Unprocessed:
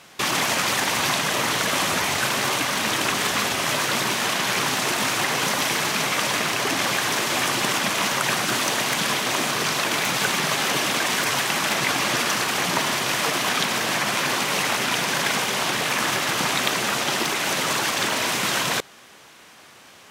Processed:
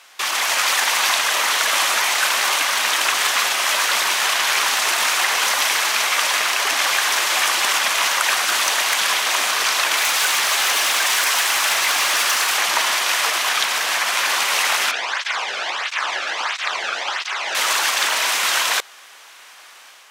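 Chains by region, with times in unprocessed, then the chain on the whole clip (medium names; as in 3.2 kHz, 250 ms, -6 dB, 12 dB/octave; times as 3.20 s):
9.97–12.56 s: treble shelf 5.6 kHz +3.5 dB + hard clipper -18.5 dBFS
14.91–17.55 s: distance through air 130 m + cancelling through-zero flanger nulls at 1.5 Hz, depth 1.1 ms
whole clip: high-pass 840 Hz 12 dB/octave; level rider gain up to 4 dB; trim +1.5 dB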